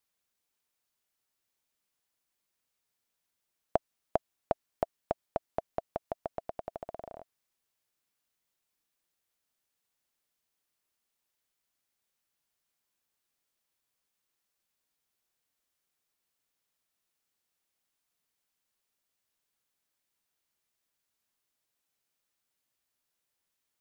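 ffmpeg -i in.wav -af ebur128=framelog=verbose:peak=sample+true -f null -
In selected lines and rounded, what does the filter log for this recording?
Integrated loudness:
  I:         -38.7 LUFS
  Threshold: -49.0 LUFS
Loudness range:
  LRA:        13.0 LU
  Threshold: -61.2 LUFS
  LRA low:   -51.2 LUFS
  LRA high:  -38.1 LUFS
Sample peak:
  Peak:       -9.8 dBFS
True peak:
  Peak:       -9.8 dBFS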